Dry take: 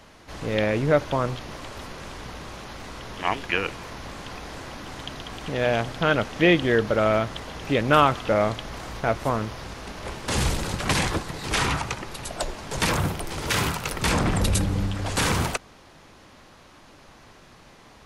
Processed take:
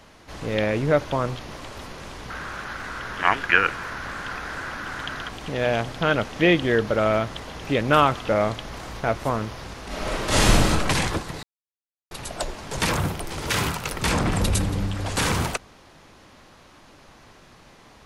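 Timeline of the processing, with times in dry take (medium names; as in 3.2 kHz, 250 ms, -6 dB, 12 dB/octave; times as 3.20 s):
2.30–5.29 s: peaking EQ 1.5 kHz +14.5 dB 0.74 oct
9.87–10.70 s: reverb throw, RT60 0.83 s, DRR -7.5 dB
11.43–12.11 s: mute
13.96–14.52 s: echo throw 280 ms, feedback 45%, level -14.5 dB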